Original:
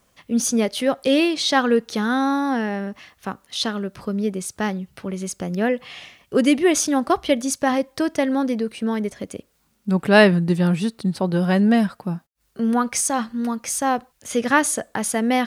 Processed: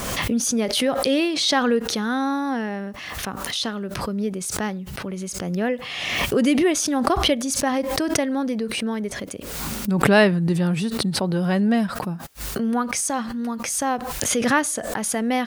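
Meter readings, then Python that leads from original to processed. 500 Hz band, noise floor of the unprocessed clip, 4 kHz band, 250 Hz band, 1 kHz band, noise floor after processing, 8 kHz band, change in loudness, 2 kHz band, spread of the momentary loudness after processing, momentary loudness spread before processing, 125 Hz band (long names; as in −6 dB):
−2.0 dB, −65 dBFS, +2.5 dB, −2.0 dB, −1.5 dB, −35 dBFS, +0.5 dB, −1.5 dB, −1.0 dB, 11 LU, 13 LU, −1.0 dB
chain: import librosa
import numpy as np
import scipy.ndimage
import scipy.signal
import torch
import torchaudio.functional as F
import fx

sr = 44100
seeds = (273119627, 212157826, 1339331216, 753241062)

y = fx.pre_swell(x, sr, db_per_s=32.0)
y = F.gain(torch.from_numpy(y), -3.0).numpy()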